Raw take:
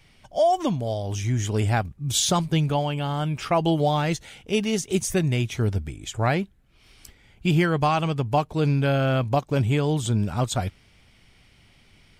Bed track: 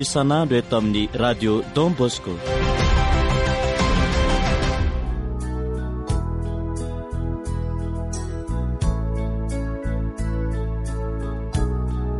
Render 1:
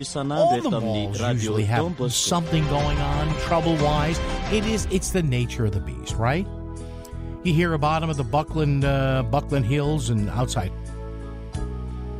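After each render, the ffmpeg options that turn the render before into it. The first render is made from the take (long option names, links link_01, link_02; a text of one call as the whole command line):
ffmpeg -i in.wav -i bed.wav -filter_complex "[1:a]volume=-7.5dB[link_01];[0:a][link_01]amix=inputs=2:normalize=0" out.wav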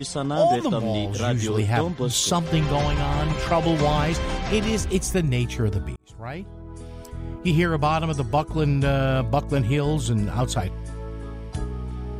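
ffmpeg -i in.wav -filter_complex "[0:a]asplit=2[link_01][link_02];[link_01]atrim=end=5.96,asetpts=PTS-STARTPTS,afade=type=out:start_time=5.956:duration=0.004:curve=hsin[link_03];[link_02]atrim=start=5.96,asetpts=PTS-STARTPTS,afade=type=in:duration=1.29[link_04];[link_03][link_04]concat=n=2:v=0:a=1" out.wav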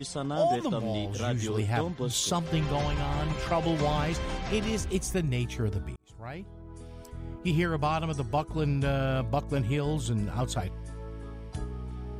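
ffmpeg -i in.wav -af "volume=-6.5dB" out.wav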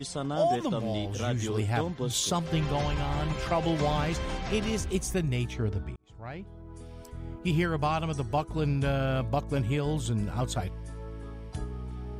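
ffmpeg -i in.wav -filter_complex "[0:a]asettb=1/sr,asplit=3[link_01][link_02][link_03];[link_01]atrim=end=5.514[link_04];[link_02]atrim=start=5.51:end=6.47,asetpts=PTS-STARTPTS,afade=type=in:duration=0.004:curve=qsin,afade=type=out:start_time=0.956:duration=0.004:curve=qsin,adynamicsmooth=sensitivity=8:basefreq=5400[link_05];[link_03]atrim=start=6.466[link_06];[link_04][link_05]acrossfade=duration=0.004:curve1=hsin:curve2=qsin[link_07];[link_07][link_06]acrossfade=duration=0.004:curve1=qsin:curve2=hsin" out.wav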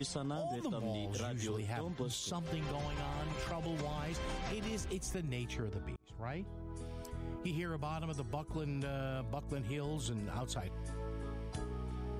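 ffmpeg -i in.wav -filter_complex "[0:a]alimiter=level_in=1dB:limit=-24dB:level=0:latency=1:release=244,volume=-1dB,acrossover=split=260|7600[link_01][link_02][link_03];[link_01]acompressor=threshold=-40dB:ratio=4[link_04];[link_02]acompressor=threshold=-40dB:ratio=4[link_05];[link_03]acompressor=threshold=-53dB:ratio=4[link_06];[link_04][link_05][link_06]amix=inputs=3:normalize=0" out.wav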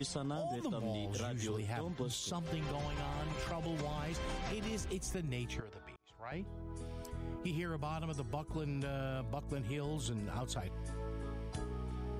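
ffmpeg -i in.wav -filter_complex "[0:a]asettb=1/sr,asplit=3[link_01][link_02][link_03];[link_01]atrim=end=5.604[link_04];[link_02]atrim=start=5.6:end=6.32,asetpts=PTS-STARTPTS,afade=type=in:duration=0.004:curve=qsin,afade=type=out:start_time=0.716:duration=0.004:curve=qsin,acrossover=split=520 6600:gain=0.178 1 0.251[link_05][link_06][link_07];[link_05][link_06][link_07]amix=inputs=3:normalize=0[link_08];[link_03]atrim=start=6.316[link_09];[link_04][link_08]acrossfade=duration=0.004:curve1=hsin:curve2=qsin[link_10];[link_10][link_09]acrossfade=duration=0.004:curve1=qsin:curve2=hsin" out.wav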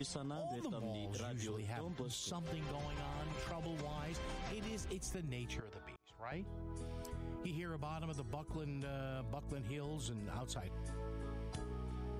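ffmpeg -i in.wav -af "acompressor=threshold=-40dB:ratio=6" out.wav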